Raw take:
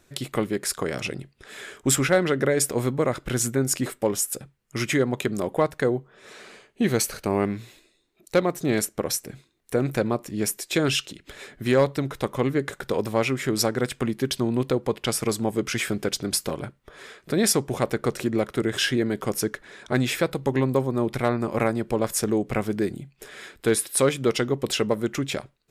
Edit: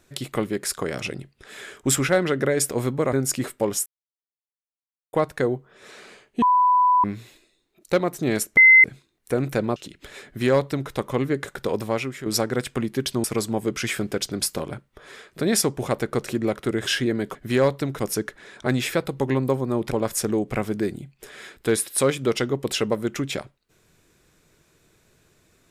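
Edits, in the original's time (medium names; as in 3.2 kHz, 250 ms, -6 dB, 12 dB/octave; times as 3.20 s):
3.13–3.55 s: delete
4.28–5.55 s: mute
6.84–7.46 s: bleep 995 Hz -14 dBFS
8.99–9.26 s: bleep 2.06 kHz -8 dBFS
10.18–11.01 s: delete
11.51–12.16 s: copy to 19.26 s
13.05–13.51 s: fade out linear, to -10.5 dB
14.49–15.15 s: delete
21.17–21.90 s: delete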